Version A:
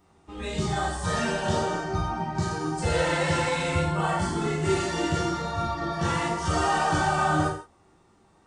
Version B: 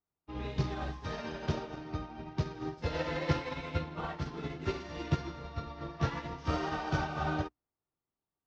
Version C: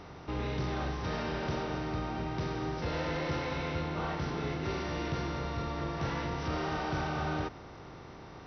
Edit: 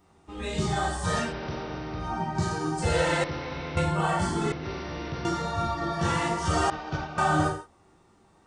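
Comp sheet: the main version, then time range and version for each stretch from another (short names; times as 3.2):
A
1.26–2.06 from C, crossfade 0.16 s
3.24–3.77 from C
4.52–5.25 from C
6.7–7.18 from B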